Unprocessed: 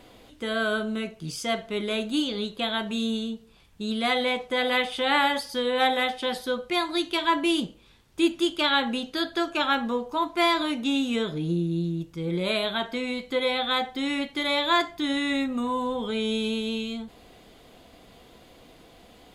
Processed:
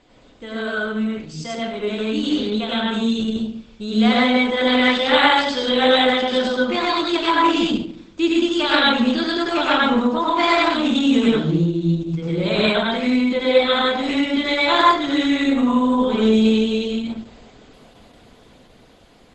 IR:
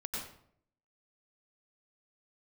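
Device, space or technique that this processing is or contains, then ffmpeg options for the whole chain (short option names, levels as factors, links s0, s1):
speakerphone in a meeting room: -filter_complex "[0:a]asettb=1/sr,asplit=3[s0][s1][s2];[s0]atrim=end=4.444[s3];[s1]atrim=start=4.44:end=6.55,asetpts=PTS-STARTPTS,afade=t=in:d=0.004:c=qsin,afade=t=out:st=2.106:d=0.004:c=qsin,adynamicequalizer=threshold=0.0112:dfrequency=3400:dqfactor=3.2:tfrequency=3400:tqfactor=3.2:attack=5:release=100:ratio=0.375:range=2:mode=boostabove:tftype=bell[s4];[s2]atrim=start=6.546[s5];[s3][s4]acrossfade=d=0.004:c1=hsin:c2=qsin[s6];[s6][s5]acrossfade=d=0.004:c1=qsin:c2=hsin[s7];[1:a]atrim=start_sample=2205[s8];[s7][s8]afir=irnorm=-1:irlink=0,dynaudnorm=f=470:g=11:m=2.99" -ar 48000 -c:a libopus -b:a 12k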